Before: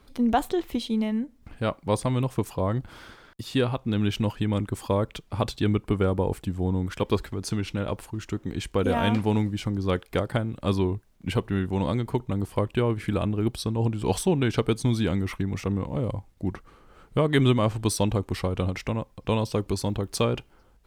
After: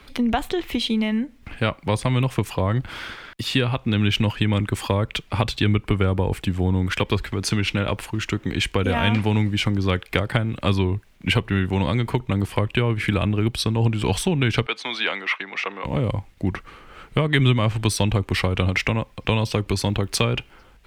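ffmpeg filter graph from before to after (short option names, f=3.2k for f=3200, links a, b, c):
-filter_complex "[0:a]asettb=1/sr,asplit=3[a][b][c];[a]atrim=end=14.664[d];[b]atrim=start=14.66:end=15.84,asetpts=PTS-STARTPTS,afade=t=in:d=0.004:c=qsin,afade=t=out:st=1.176:d=0.004:c=qsin,highpass=f=180:w=0.5412,highpass=f=180:w=1.3066,acrossover=split=540 4700:gain=0.0708 1 0.0794[e][f][g];[e][f][g]amix=inputs=3:normalize=0[h];[c]atrim=start=15.836[i];[d][h]acrossfade=d=0.004:c1=hsin:c2=qsin[j];[j][i]acrossfade=d=0.004:c1=qsin:c2=hsin,acrossover=split=160[k][l];[l]acompressor=threshold=-29dB:ratio=4[m];[k][m]amix=inputs=2:normalize=0,equalizer=f=2.4k:t=o:w=1.6:g=10.5,volume=6.5dB"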